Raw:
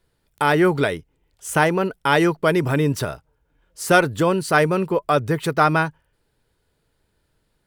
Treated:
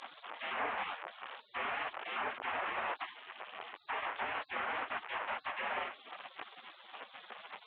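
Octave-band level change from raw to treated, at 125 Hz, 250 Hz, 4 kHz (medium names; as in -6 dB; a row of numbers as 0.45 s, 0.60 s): under -40 dB, -34.0 dB, -13.5 dB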